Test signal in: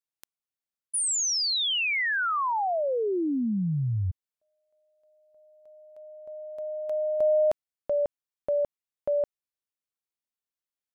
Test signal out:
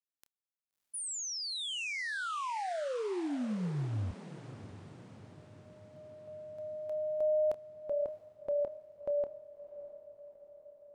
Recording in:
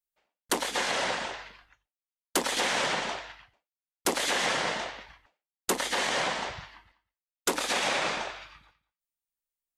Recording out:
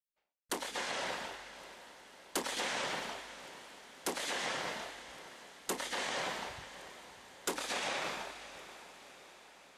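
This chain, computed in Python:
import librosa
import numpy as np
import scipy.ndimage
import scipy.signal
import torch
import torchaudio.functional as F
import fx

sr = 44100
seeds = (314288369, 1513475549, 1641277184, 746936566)

y = fx.doubler(x, sr, ms=28.0, db=-13.5)
y = fx.rider(y, sr, range_db=4, speed_s=2.0)
y = fx.echo_diffused(y, sr, ms=642, feedback_pct=58, wet_db=-14)
y = F.gain(torch.from_numpy(y), -9.0).numpy()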